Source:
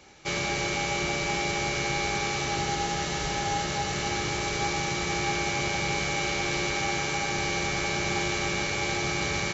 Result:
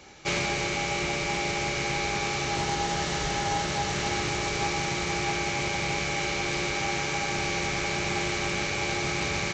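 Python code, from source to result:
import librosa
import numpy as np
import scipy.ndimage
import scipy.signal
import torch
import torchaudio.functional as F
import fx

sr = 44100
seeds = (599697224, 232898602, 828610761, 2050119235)

y = fx.rider(x, sr, range_db=10, speed_s=0.5)
y = fx.doppler_dist(y, sr, depth_ms=0.17)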